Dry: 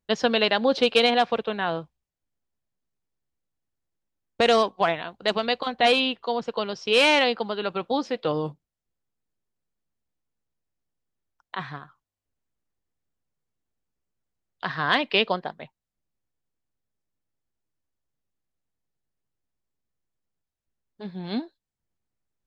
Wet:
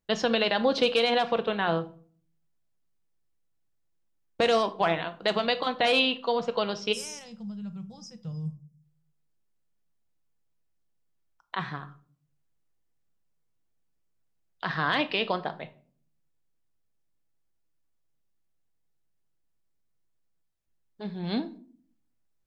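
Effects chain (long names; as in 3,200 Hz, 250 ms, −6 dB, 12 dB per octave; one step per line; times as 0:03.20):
gain on a spectral selection 0:06.92–0:08.82, 230–4,900 Hz −28 dB
brickwall limiter −14 dBFS, peak gain reduction 8 dB
rectangular room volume 470 cubic metres, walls furnished, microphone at 0.66 metres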